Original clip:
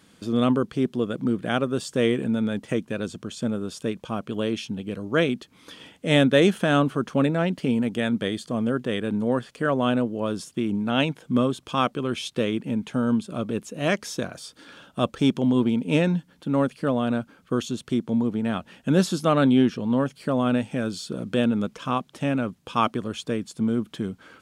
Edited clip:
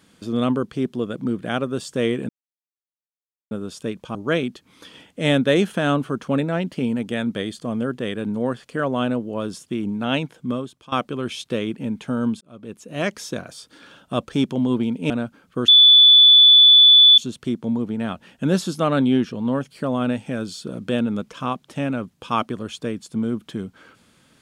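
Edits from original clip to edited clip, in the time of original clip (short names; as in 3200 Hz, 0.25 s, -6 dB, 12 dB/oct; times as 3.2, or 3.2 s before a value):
2.29–3.51 mute
4.15–5.01 cut
11.09–11.78 fade out, to -17.5 dB
13.27–13.96 fade in
15.96–17.05 cut
17.63 add tone 3470 Hz -7 dBFS 1.50 s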